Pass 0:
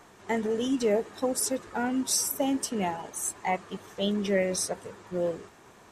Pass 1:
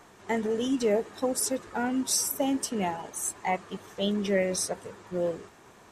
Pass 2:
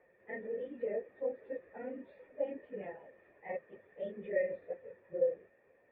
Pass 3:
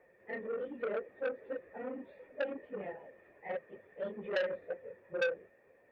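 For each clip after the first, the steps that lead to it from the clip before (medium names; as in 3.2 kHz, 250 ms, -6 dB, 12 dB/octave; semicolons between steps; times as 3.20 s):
no audible change
phase randomisation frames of 50 ms; cascade formant filter e; trim -1.5 dB
transformer saturation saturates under 1.7 kHz; trim +2.5 dB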